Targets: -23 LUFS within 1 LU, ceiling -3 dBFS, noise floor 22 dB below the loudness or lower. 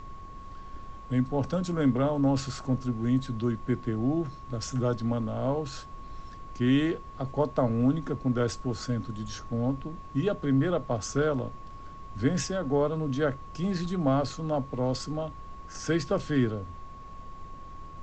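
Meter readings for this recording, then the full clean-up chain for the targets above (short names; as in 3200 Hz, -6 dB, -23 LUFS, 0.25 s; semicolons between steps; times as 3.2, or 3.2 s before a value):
steady tone 1100 Hz; tone level -45 dBFS; noise floor -44 dBFS; noise floor target -51 dBFS; loudness -29.0 LUFS; peak -12.5 dBFS; loudness target -23.0 LUFS
-> notch 1100 Hz, Q 30; noise print and reduce 7 dB; gain +6 dB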